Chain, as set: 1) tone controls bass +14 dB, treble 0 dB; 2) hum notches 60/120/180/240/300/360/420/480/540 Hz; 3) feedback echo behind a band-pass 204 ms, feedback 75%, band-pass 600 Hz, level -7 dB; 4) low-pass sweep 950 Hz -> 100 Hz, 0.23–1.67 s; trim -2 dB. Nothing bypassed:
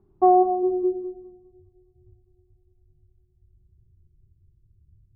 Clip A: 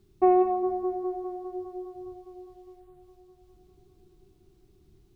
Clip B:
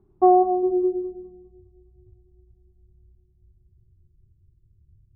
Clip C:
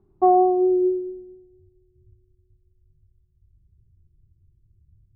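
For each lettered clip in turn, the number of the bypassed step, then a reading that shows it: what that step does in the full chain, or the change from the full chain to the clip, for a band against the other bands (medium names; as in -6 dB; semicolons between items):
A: 4, momentary loudness spread change +8 LU; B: 2, 1 kHz band -1.5 dB; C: 3, momentary loudness spread change -3 LU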